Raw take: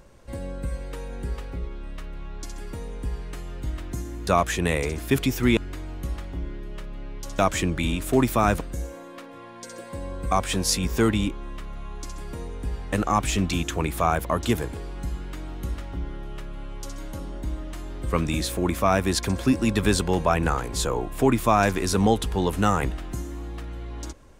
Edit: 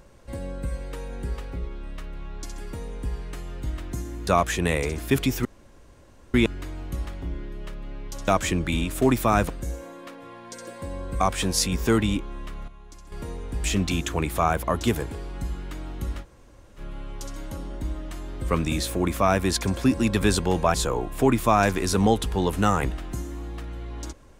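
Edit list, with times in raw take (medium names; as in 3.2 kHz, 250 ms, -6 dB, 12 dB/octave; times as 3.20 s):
5.45 s: insert room tone 0.89 s
11.79–12.23 s: gain -10.5 dB
12.75–13.26 s: delete
15.85–16.41 s: room tone, crossfade 0.06 s
20.36–20.74 s: delete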